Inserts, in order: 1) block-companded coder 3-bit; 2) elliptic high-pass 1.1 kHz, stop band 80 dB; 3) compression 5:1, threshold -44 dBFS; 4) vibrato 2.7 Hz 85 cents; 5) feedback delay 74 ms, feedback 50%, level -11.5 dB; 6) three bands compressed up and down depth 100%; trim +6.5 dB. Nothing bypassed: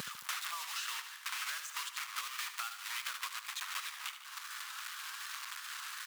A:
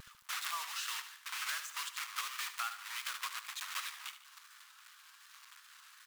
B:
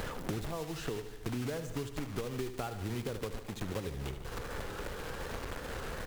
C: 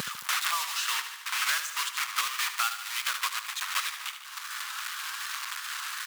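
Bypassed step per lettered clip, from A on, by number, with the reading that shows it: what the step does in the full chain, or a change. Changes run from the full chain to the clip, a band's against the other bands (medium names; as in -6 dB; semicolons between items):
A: 6, crest factor change +2.5 dB; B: 2, 500 Hz band +34.5 dB; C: 3, mean gain reduction 7.5 dB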